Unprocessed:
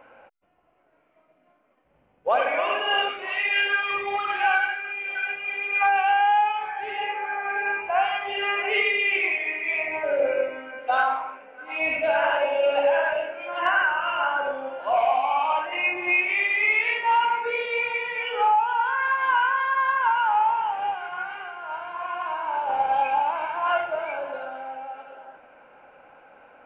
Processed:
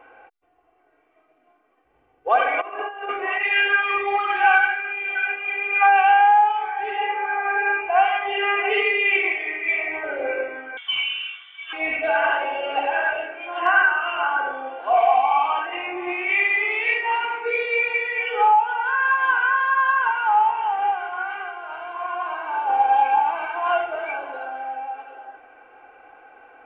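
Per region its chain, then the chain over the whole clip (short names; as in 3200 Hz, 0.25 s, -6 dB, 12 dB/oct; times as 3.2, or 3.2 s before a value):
2.61–3.43 LPF 1800 Hz + negative-ratio compressor -31 dBFS, ratio -0.5
10.77–11.73 compressor 2:1, threshold -28 dBFS + inverted band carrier 3800 Hz
whole clip: tone controls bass -5 dB, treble -5 dB; comb 2.6 ms, depth 77%; gain +1 dB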